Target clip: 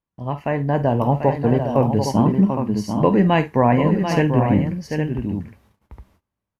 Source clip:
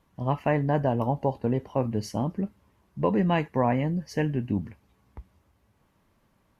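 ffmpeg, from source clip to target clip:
-filter_complex "[0:a]dynaudnorm=f=120:g=13:m=9dB,aecho=1:1:49|740|812:0.224|0.422|0.398,agate=range=-22dB:threshold=-54dB:ratio=16:detection=peak,asettb=1/sr,asplit=3[a][b][c];[a]atrim=end=2.074[d];[b]atrim=start=2.07:end=3.02,asetpts=PTS-STARTPTS,afade=t=in:d=0.004:c=qsin,afade=t=out:st=0.946:d=0.004:c=qsin,equalizer=f=200:t=o:w=0.33:g=8,equalizer=f=315:t=o:w=0.33:g=4,equalizer=f=500:t=o:w=0.33:g=-5,equalizer=f=1k:t=o:w=0.33:g=7[e];[c]atrim=start=3.016[f];[d][e]acrossfade=d=0.004:c1=hsin:c2=qsin[g];[g][f]acrossfade=d=0.004:c1=qsin:c2=hsin"

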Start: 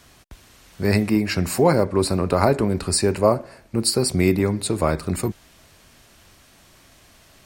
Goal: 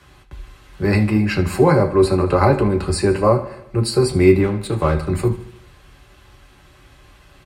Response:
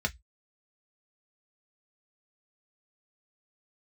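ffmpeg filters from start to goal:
-filter_complex "[0:a]asettb=1/sr,asplit=3[a][b][c];[a]atrim=end=4.434[d];[b]atrim=start=4.43:end=4.95,asetpts=PTS-STARTPTS,afade=t=in:d=0.004:c=qsin,afade=t=out:st=0.516:d=0.004:c=qsin,aeval=exprs='sgn(val(0))*max(abs(val(0))-0.0251,0)':c=same[e];[c]atrim=start=4.946[f];[d][e]acrossfade=d=0.004:c1=hsin:c2=qsin[g];[g][f]acrossfade=d=0.004:c1=qsin:c2=hsin,aecho=1:1:76|152|228|304|380:0.158|0.0903|0.0515|0.0294|0.0167[h];[1:a]atrim=start_sample=2205,asetrate=25578,aresample=44100[i];[h][i]afir=irnorm=-1:irlink=0,volume=-7.5dB"

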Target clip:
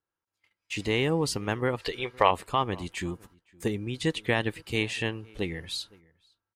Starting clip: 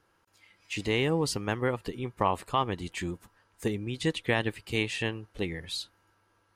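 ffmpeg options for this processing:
-filter_complex "[0:a]asplit=3[a][b][c];[a]afade=t=out:st=1.78:d=0.02[d];[b]equalizer=f=125:t=o:w=1:g=-6,equalizer=f=250:t=o:w=1:g=-9,equalizer=f=500:t=o:w=1:g=8,equalizer=f=2k:t=o:w=1:g=9,equalizer=f=4k:t=o:w=1:g=12,afade=t=in:st=1.78:d=0.02,afade=t=out:st=2.3:d=0.02[e];[c]afade=t=in:st=2.3:d=0.02[f];[d][e][f]amix=inputs=3:normalize=0,agate=range=-23dB:threshold=-56dB:ratio=16:detection=peak,asplit=2[g][h];[h]adelay=513.1,volume=-25dB,highshelf=f=4k:g=-11.5[i];[g][i]amix=inputs=2:normalize=0,volume=1dB"

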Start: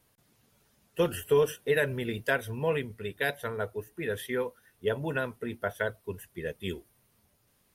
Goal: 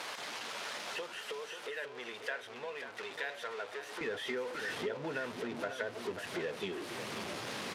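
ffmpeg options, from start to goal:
-af "aeval=exprs='val(0)+0.5*0.0299*sgn(val(0))':c=same,acompressor=threshold=-36dB:ratio=10,asetnsamples=n=441:p=0,asendcmd='4.01 highpass f 250',highpass=640,lowpass=4.3k,aecho=1:1:540:0.355,volume=2dB"

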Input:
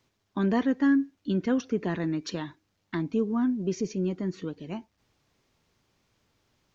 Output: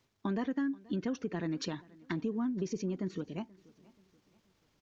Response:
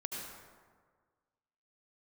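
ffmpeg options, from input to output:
-filter_complex "[0:a]acompressor=threshold=-29dB:ratio=4,atempo=1.4,asplit=2[a][b];[b]aecho=0:1:481|962|1443:0.0668|0.0281|0.0118[c];[a][c]amix=inputs=2:normalize=0,volume=-2dB"

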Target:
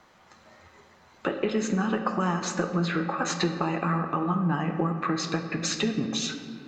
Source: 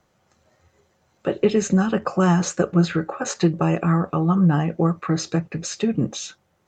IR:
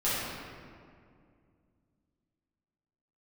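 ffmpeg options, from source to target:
-filter_complex "[0:a]equalizer=f=125:t=o:w=1:g=-4,equalizer=f=250:t=o:w=1:g=6,equalizer=f=1k:t=o:w=1:g=9,equalizer=f=2k:t=o:w=1:g=7,equalizer=f=4k:t=o:w=1:g=7,acompressor=threshold=-28dB:ratio=4,asplit=2[a][b];[1:a]atrim=start_sample=2205[c];[b][c]afir=irnorm=-1:irlink=0,volume=-15.5dB[d];[a][d]amix=inputs=2:normalize=0"

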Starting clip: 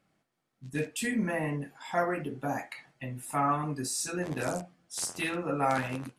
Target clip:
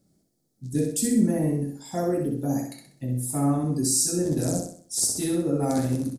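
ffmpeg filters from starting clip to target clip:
-filter_complex "[0:a]firequalizer=gain_entry='entry(330,0);entry(1000,-20);entry(11000,-23)':delay=0.05:min_phase=1,aexciter=amount=10:drive=6.7:freq=4.1k,asplit=2[a][b];[b]aecho=0:1:64|128|192|256|320:0.562|0.225|0.09|0.036|0.0144[c];[a][c]amix=inputs=2:normalize=0,volume=8.5dB"

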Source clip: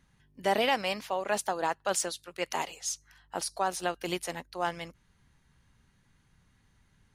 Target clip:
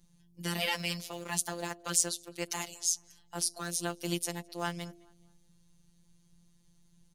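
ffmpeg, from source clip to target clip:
-filter_complex "[0:a]bass=f=250:g=7,treble=f=4k:g=9,bandreject=f=110.7:t=h:w=4,bandreject=f=221.4:t=h:w=4,bandreject=f=332.1:t=h:w=4,bandreject=f=442.8:t=h:w=4,bandreject=f=553.5:t=h:w=4,bandreject=f=664.2:t=h:w=4,acrossover=split=390|1000|2400[a][b][c][d];[b]acompressor=threshold=-41dB:ratio=6[e];[c]aeval=exprs='val(0)*gte(abs(val(0)),0.00668)':c=same[f];[a][e][f][d]amix=inputs=4:normalize=0,afftfilt=real='hypot(re,im)*cos(PI*b)':imag='0':win_size=1024:overlap=0.75,asplit=2[g][h];[h]adelay=212,lowpass=f=2k:p=1,volume=-22dB,asplit=2[i][j];[j]adelay=212,lowpass=f=2k:p=1,volume=0.38,asplit=2[k][l];[l]adelay=212,lowpass=f=2k:p=1,volume=0.38[m];[g][i][k][m]amix=inputs=4:normalize=0"

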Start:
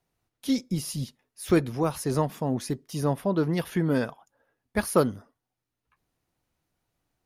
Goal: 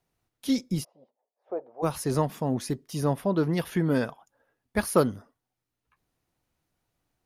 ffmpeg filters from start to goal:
-filter_complex "[0:a]asplit=3[a][b][c];[a]afade=t=out:st=0.83:d=0.02[d];[b]asuperpass=centerf=650:order=4:qfactor=2,afade=t=in:st=0.83:d=0.02,afade=t=out:st=1.82:d=0.02[e];[c]afade=t=in:st=1.82:d=0.02[f];[d][e][f]amix=inputs=3:normalize=0"

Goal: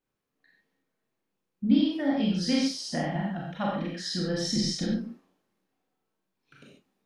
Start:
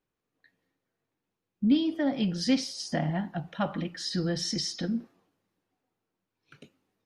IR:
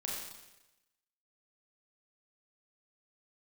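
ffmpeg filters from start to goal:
-filter_complex "[0:a]asettb=1/sr,asplit=3[a][b][c];[a]atrim=end=4.444[d];[b]atrim=start=4.44:end=4.84,asetpts=PTS-STARTPTS,afade=t=in:d=0.004:c=qsin,afade=t=out:st=0.396:d=0.004:c=qsin,lowshelf=f=230:g=11.5[e];[c]atrim=start=4.836[f];[d][e]acrossfade=d=0.004:c1=hsin:c2=qsin[g];[g][f]acrossfade=d=0.004:c1=qsin:c2=hsin[h];[1:a]atrim=start_sample=2205,atrim=end_sample=6615[i];[h][i]afir=irnorm=-1:irlink=0"

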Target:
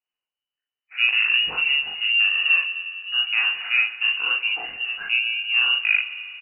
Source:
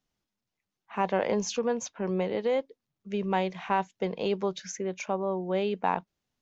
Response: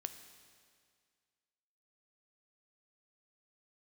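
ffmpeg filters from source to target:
-filter_complex "[0:a]agate=range=-13dB:threshold=-50dB:ratio=16:detection=peak,asetrate=26222,aresample=44100,atempo=1.68179,flanger=delay=17.5:depth=5.9:speed=0.97,asplit=2[a][b];[1:a]atrim=start_sample=2205,asetrate=31752,aresample=44100,adelay=41[c];[b][c]afir=irnorm=-1:irlink=0,volume=1dB[d];[a][d]amix=inputs=2:normalize=0,lowpass=f=2.6k:t=q:w=0.5098,lowpass=f=2.6k:t=q:w=0.6013,lowpass=f=2.6k:t=q:w=0.9,lowpass=f=2.6k:t=q:w=2.563,afreqshift=-3000,volume=7dB"

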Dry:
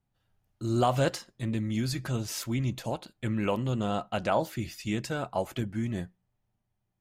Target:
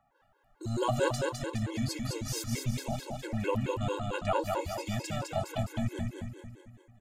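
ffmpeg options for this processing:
-filter_complex "[0:a]acrossover=split=470|1800[a][b][c];[a]volume=26dB,asoftclip=hard,volume=-26dB[d];[b]acompressor=mode=upward:threshold=-52dB:ratio=2.5[e];[d][e][c]amix=inputs=3:normalize=0,equalizer=f=7.2k:t=o:w=0.42:g=3,aecho=1:1:207|414|621|828|1035|1242|1449:0.668|0.348|0.181|0.094|0.0489|0.0254|0.0132,asubboost=boost=7.5:cutoff=63,afftfilt=real='re*gt(sin(2*PI*4.5*pts/sr)*(1-2*mod(floor(b*sr/1024/280),2)),0)':imag='im*gt(sin(2*PI*4.5*pts/sr)*(1-2*mod(floor(b*sr/1024/280),2)),0)':win_size=1024:overlap=0.75"

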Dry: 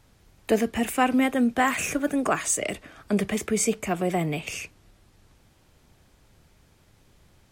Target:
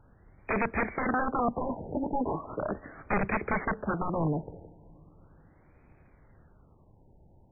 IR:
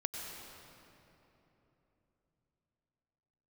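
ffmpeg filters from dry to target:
-filter_complex "[0:a]aeval=exprs='(mod(10.6*val(0)+1,2)-1)/10.6':c=same,asplit=2[a][b];[1:a]atrim=start_sample=2205,lowpass=1.4k[c];[b][c]afir=irnorm=-1:irlink=0,volume=-21dB[d];[a][d]amix=inputs=2:normalize=0,afftfilt=real='re*lt(b*sr/1024,940*pow(2600/940,0.5+0.5*sin(2*PI*0.38*pts/sr)))':imag='im*lt(b*sr/1024,940*pow(2600/940,0.5+0.5*sin(2*PI*0.38*pts/sr)))':win_size=1024:overlap=0.75"

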